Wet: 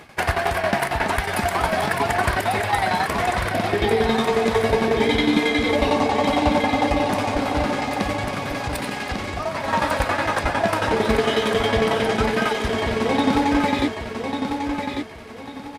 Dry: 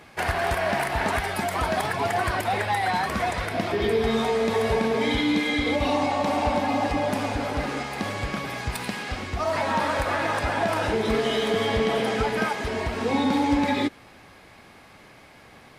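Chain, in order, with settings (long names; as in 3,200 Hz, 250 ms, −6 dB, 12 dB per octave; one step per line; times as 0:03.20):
0:08.10–0:09.68: downward compressor, threshold −27 dBFS, peak gain reduction 6 dB
shaped tremolo saw down 11 Hz, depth 75%
on a send: repeating echo 1,146 ms, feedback 31%, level −6 dB
on the sum: level +6.5 dB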